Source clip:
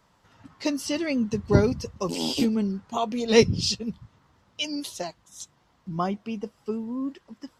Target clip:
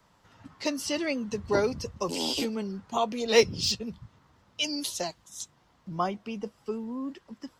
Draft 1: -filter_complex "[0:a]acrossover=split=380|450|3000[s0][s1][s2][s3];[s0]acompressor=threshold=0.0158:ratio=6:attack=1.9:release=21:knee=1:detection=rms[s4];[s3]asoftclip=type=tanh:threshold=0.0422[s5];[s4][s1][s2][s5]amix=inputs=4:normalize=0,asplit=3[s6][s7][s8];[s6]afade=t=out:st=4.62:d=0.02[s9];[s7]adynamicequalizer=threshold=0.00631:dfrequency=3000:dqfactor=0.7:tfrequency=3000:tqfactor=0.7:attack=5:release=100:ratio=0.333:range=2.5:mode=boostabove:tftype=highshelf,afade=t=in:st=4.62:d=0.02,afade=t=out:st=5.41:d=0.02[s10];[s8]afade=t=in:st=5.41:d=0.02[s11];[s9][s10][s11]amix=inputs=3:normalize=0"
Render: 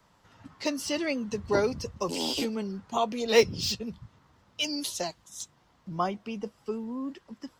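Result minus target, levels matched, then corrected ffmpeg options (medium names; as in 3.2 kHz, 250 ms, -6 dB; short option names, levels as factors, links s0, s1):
saturation: distortion +8 dB
-filter_complex "[0:a]acrossover=split=380|450|3000[s0][s1][s2][s3];[s0]acompressor=threshold=0.0158:ratio=6:attack=1.9:release=21:knee=1:detection=rms[s4];[s3]asoftclip=type=tanh:threshold=0.1[s5];[s4][s1][s2][s5]amix=inputs=4:normalize=0,asplit=3[s6][s7][s8];[s6]afade=t=out:st=4.62:d=0.02[s9];[s7]adynamicequalizer=threshold=0.00631:dfrequency=3000:dqfactor=0.7:tfrequency=3000:tqfactor=0.7:attack=5:release=100:ratio=0.333:range=2.5:mode=boostabove:tftype=highshelf,afade=t=in:st=4.62:d=0.02,afade=t=out:st=5.41:d=0.02[s10];[s8]afade=t=in:st=5.41:d=0.02[s11];[s9][s10][s11]amix=inputs=3:normalize=0"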